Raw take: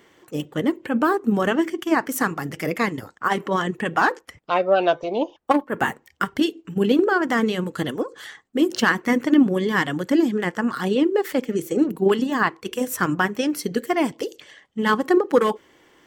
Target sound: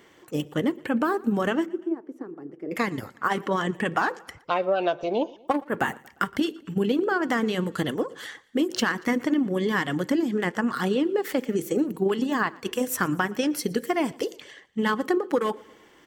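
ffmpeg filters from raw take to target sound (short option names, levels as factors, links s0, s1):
-filter_complex "[0:a]acompressor=threshold=0.1:ratio=6,asplit=3[s0][s1][s2];[s0]afade=t=out:st=1.65:d=0.02[s3];[s1]bandpass=f=360:t=q:w=4.5:csg=0,afade=t=in:st=1.65:d=0.02,afade=t=out:st=2.71:d=0.02[s4];[s2]afade=t=in:st=2.71:d=0.02[s5];[s3][s4][s5]amix=inputs=3:normalize=0,aecho=1:1:117|234|351:0.0668|0.0354|0.0188"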